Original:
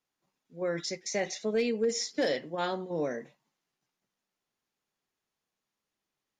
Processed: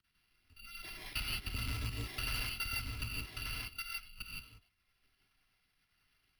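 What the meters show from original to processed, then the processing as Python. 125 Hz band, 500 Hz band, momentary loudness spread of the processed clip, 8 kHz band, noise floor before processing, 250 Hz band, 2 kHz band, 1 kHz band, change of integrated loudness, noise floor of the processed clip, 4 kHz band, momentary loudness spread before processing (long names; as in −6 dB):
+3.5 dB, −28.5 dB, 11 LU, −8.5 dB, below −85 dBFS, −16.5 dB, −1.0 dB, −10.5 dB, −7.5 dB, −79 dBFS, −0.5 dB, 5 LU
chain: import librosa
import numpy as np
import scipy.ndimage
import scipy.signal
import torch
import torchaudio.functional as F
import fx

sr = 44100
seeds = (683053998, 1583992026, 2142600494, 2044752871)

y = fx.bit_reversed(x, sr, seeds[0], block=256)
y = fx.filter_lfo_notch(y, sr, shape='sine', hz=9.9, low_hz=260.0, high_hz=1600.0, q=0.71)
y = fx.bass_treble(y, sr, bass_db=2, treble_db=-11)
y = fx.level_steps(y, sr, step_db=19)
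y = fx.peak_eq(y, sr, hz=650.0, db=-13.0, octaves=1.5)
y = fx.rev_gated(y, sr, seeds[1], gate_ms=190, shape='rising', drr_db=-3.0)
y = np.repeat(scipy.signal.resample_poly(y, 1, 6), 6)[:len(y)]
y = y + 10.0 ** (-6.5 / 20.0) * np.pad(y, (int(1185 * sr / 1000.0), 0))[:len(y)]
y = 10.0 ** (-39.5 / 20.0) * np.tanh(y / 10.0 ** (-39.5 / 20.0))
y = fx.band_squash(y, sr, depth_pct=40)
y = y * 10.0 ** (9.5 / 20.0)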